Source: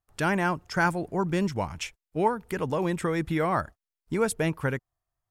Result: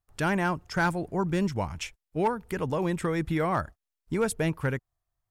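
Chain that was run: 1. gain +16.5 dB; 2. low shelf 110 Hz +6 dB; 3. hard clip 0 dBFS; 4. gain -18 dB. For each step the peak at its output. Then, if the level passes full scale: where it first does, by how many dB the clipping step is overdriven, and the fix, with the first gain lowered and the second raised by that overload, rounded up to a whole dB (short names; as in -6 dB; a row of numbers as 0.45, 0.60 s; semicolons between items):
+5.5, +5.5, 0.0, -18.0 dBFS; step 1, 5.5 dB; step 1 +10.5 dB, step 4 -12 dB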